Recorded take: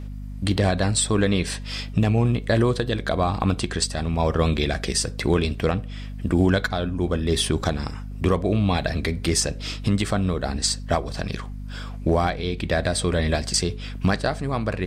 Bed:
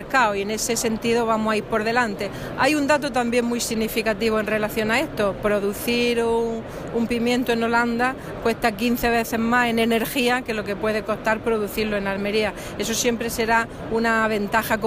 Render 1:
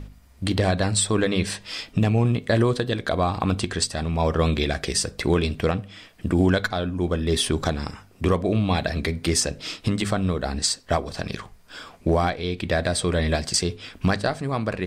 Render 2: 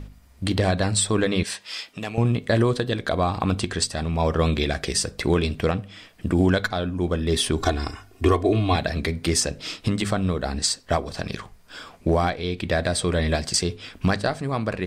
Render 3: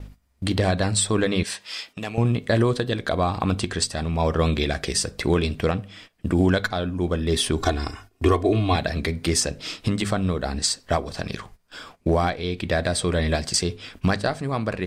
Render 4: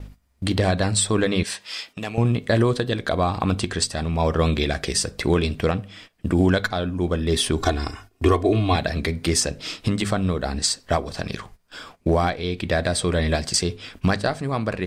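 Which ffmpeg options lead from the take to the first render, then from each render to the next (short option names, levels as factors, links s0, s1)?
-af "bandreject=f=50:t=h:w=4,bandreject=f=100:t=h:w=4,bandreject=f=150:t=h:w=4,bandreject=f=200:t=h:w=4,bandreject=f=250:t=h:w=4"
-filter_complex "[0:a]asettb=1/sr,asplit=3[s0][s1][s2];[s0]atrim=end=1.434[s3];[s1]atrim=start=1.43:end=2.18,asetpts=PTS-STARTPTS,afade=t=in:d=0.004:c=qsin,afade=t=out:st=0.746:d=0.004:c=qsin,highpass=f=910:p=1[s4];[s2]atrim=start=2.176[s5];[s3][s4]acrossfade=d=0.004:c1=hsin:c2=qsin[s6];[s6][s5]acrossfade=d=0.004:c1=qsin:c2=hsin,asettb=1/sr,asplit=3[s7][s8][s9];[s7]atrim=end=7.584[s10];[s8]atrim=start=7.58:end=8.76,asetpts=PTS-STARTPTS,afade=t=in:d=0.004:c=qsin,afade=t=out:st=1.176:d=0.004:c=qsin,aecho=1:1:2.8:0.87,atrim=end_sample=52038[s11];[s9]atrim=start=8.756[s12];[s10][s11]acrossfade=d=0.004:c1=hsin:c2=qsin[s13];[s13][s12]acrossfade=d=0.004:c1=qsin:c2=hsin"
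-af "agate=range=0.2:threshold=0.00631:ratio=16:detection=peak"
-af "volume=1.12"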